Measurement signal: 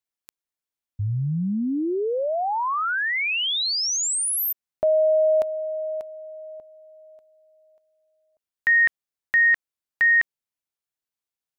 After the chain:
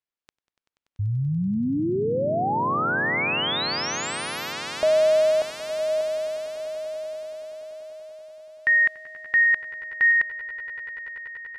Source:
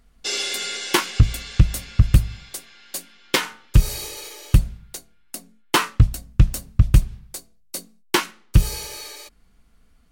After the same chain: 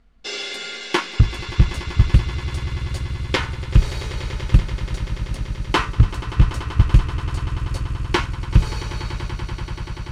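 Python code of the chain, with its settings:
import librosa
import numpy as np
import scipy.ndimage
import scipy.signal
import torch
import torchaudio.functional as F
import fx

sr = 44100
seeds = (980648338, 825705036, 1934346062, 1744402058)

y = scipy.signal.sosfilt(scipy.signal.bessel(2, 3600.0, 'lowpass', norm='mag', fs=sr, output='sos'), x)
y = fx.echo_swell(y, sr, ms=96, loudest=8, wet_db=-16.5)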